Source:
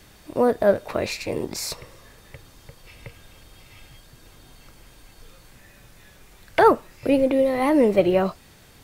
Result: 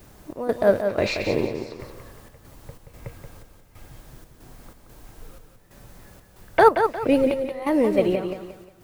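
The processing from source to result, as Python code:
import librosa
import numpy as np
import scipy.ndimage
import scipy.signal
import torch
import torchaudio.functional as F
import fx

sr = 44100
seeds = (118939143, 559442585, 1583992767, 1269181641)

p1 = fx.env_lowpass(x, sr, base_hz=1100.0, full_db=-17.0)
p2 = fx.quant_dither(p1, sr, seeds[0], bits=10, dither='triangular')
p3 = fx.rider(p2, sr, range_db=4, speed_s=0.5)
p4 = fx.step_gate(p3, sr, bpm=92, pattern='xx.xx.xxx..x', floor_db=-12.0, edge_ms=4.5)
y = p4 + fx.echo_feedback(p4, sr, ms=178, feedback_pct=34, wet_db=-7.0, dry=0)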